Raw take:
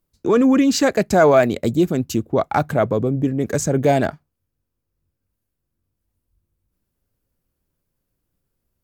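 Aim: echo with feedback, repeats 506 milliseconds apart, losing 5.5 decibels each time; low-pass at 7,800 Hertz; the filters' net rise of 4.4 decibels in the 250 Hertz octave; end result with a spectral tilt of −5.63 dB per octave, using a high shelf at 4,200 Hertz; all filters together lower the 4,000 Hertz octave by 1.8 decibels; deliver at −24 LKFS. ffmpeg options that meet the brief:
ffmpeg -i in.wav -af "lowpass=7800,equalizer=frequency=250:width_type=o:gain=5,equalizer=frequency=4000:width_type=o:gain=-7.5,highshelf=frequency=4200:gain=8.5,aecho=1:1:506|1012|1518|2024|2530|3036|3542:0.531|0.281|0.149|0.079|0.0419|0.0222|0.0118,volume=-9dB" out.wav

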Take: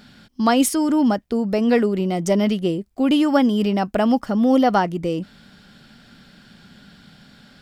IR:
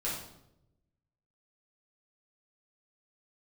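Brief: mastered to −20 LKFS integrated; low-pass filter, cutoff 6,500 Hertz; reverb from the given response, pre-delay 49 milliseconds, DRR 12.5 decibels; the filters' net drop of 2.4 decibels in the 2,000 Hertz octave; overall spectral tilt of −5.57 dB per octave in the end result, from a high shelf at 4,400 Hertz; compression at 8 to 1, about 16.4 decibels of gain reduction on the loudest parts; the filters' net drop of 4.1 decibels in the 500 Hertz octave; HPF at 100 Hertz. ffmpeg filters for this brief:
-filter_complex "[0:a]highpass=100,lowpass=6500,equalizer=frequency=500:width_type=o:gain=-5,equalizer=frequency=2000:width_type=o:gain=-4,highshelf=frequency=4400:gain=5.5,acompressor=threshold=-32dB:ratio=8,asplit=2[link_01][link_02];[1:a]atrim=start_sample=2205,adelay=49[link_03];[link_02][link_03]afir=irnorm=-1:irlink=0,volume=-17dB[link_04];[link_01][link_04]amix=inputs=2:normalize=0,volume=15dB"

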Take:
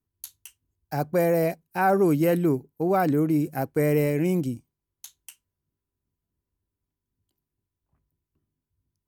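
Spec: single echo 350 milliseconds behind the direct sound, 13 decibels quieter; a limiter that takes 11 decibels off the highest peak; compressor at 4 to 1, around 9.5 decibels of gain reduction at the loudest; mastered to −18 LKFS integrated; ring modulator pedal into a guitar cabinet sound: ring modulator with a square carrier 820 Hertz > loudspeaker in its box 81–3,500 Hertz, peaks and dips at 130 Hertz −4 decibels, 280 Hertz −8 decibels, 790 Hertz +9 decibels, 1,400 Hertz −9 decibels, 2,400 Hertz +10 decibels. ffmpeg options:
ffmpeg -i in.wav -af "acompressor=threshold=-29dB:ratio=4,alimiter=level_in=5dB:limit=-24dB:level=0:latency=1,volume=-5dB,aecho=1:1:350:0.224,aeval=exprs='val(0)*sgn(sin(2*PI*820*n/s))':channel_layout=same,highpass=81,equalizer=frequency=130:width_type=q:width=4:gain=-4,equalizer=frequency=280:width_type=q:width=4:gain=-8,equalizer=frequency=790:width_type=q:width=4:gain=9,equalizer=frequency=1400:width_type=q:width=4:gain=-9,equalizer=frequency=2400:width_type=q:width=4:gain=10,lowpass=frequency=3500:width=0.5412,lowpass=frequency=3500:width=1.3066,volume=18.5dB" out.wav

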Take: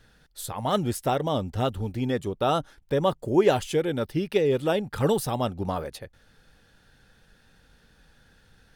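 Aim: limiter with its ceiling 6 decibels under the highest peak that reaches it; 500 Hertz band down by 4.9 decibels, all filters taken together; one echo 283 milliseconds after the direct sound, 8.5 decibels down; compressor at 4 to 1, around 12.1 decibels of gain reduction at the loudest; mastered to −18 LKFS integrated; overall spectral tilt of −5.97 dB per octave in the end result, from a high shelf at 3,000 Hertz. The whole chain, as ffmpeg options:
ffmpeg -i in.wav -af "equalizer=frequency=500:width_type=o:gain=-6,highshelf=frequency=3000:gain=-6.5,acompressor=threshold=-33dB:ratio=4,alimiter=level_in=4dB:limit=-24dB:level=0:latency=1,volume=-4dB,aecho=1:1:283:0.376,volume=20.5dB" out.wav

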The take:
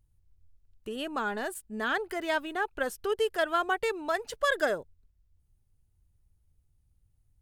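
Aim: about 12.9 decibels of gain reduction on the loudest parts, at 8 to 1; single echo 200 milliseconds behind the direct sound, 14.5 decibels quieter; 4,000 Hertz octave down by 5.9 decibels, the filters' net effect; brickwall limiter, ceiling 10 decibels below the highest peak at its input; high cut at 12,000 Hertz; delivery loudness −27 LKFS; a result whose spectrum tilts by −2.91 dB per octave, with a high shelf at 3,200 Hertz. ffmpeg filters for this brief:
ffmpeg -i in.wav -af "lowpass=12000,highshelf=frequency=3200:gain=-6.5,equalizer=frequency=4000:width_type=o:gain=-3.5,acompressor=threshold=-37dB:ratio=8,alimiter=level_in=12dB:limit=-24dB:level=0:latency=1,volume=-12dB,aecho=1:1:200:0.188,volume=18.5dB" out.wav

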